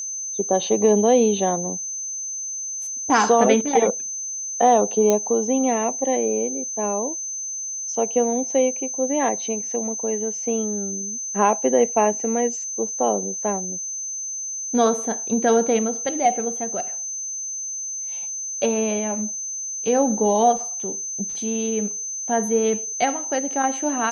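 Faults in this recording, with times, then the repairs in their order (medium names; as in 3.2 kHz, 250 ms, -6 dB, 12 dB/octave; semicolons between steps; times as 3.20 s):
whine 6.2 kHz -27 dBFS
5.10 s: pop -6 dBFS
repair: de-click; band-stop 6.2 kHz, Q 30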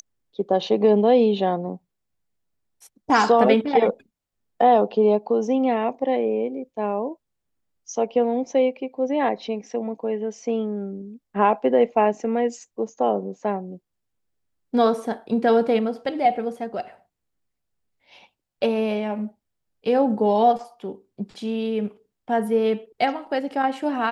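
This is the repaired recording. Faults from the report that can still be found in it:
nothing left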